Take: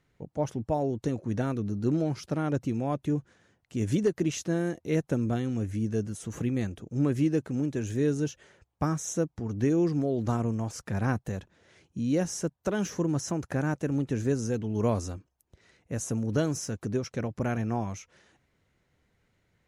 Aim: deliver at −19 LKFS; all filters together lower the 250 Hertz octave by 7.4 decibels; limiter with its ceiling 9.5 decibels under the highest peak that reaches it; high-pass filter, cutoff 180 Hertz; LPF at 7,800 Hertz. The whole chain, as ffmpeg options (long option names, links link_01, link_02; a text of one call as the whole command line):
ffmpeg -i in.wav -af "highpass=180,lowpass=7800,equalizer=frequency=250:width_type=o:gain=-8.5,volume=18dB,alimiter=limit=-6.5dB:level=0:latency=1" out.wav